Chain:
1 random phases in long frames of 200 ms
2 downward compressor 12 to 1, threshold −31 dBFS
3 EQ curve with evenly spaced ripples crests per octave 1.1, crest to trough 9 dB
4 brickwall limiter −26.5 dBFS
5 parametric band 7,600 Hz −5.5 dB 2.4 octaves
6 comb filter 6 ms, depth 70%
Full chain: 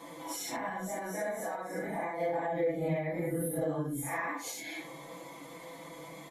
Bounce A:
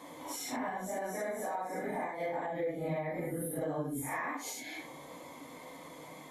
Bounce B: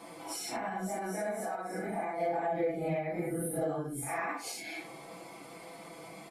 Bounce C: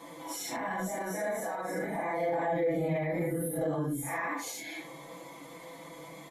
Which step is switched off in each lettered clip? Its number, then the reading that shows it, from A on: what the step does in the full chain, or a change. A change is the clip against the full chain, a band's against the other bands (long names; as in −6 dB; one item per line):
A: 6, 125 Hz band −2.5 dB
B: 3, 125 Hz band −2.0 dB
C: 2, average gain reduction 6.0 dB